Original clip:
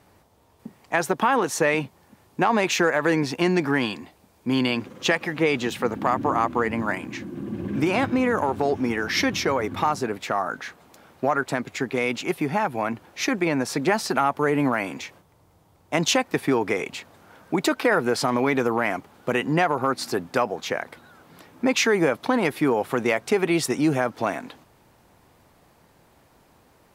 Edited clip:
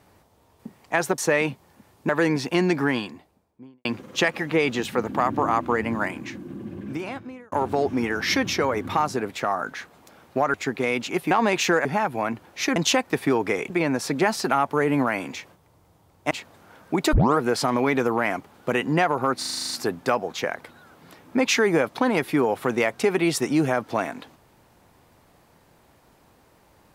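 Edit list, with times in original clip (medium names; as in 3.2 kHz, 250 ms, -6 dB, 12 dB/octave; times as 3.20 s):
1.18–1.51 s: delete
2.42–2.96 s: move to 12.45 s
3.63–4.72 s: studio fade out
6.93–8.39 s: fade out
11.41–11.68 s: delete
15.97–16.91 s: move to 13.36 s
17.73 s: tape start 0.26 s
19.99 s: stutter 0.04 s, 9 plays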